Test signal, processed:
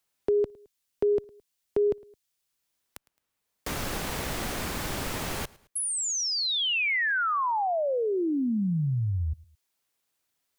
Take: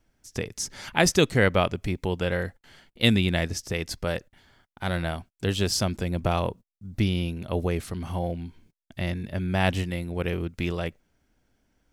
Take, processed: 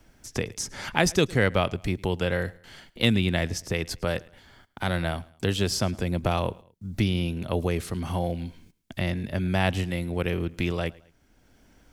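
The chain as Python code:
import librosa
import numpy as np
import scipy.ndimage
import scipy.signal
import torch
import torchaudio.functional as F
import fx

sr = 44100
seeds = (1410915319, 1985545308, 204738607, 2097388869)

p1 = fx.clip_asym(x, sr, top_db=-9.5, bottom_db=-6.5)
p2 = x + (p1 * 10.0 ** (-7.0 / 20.0))
p3 = fx.echo_feedback(p2, sr, ms=108, feedback_pct=35, wet_db=-24)
p4 = fx.band_squash(p3, sr, depth_pct=40)
y = p4 * 10.0 ** (-3.0 / 20.0)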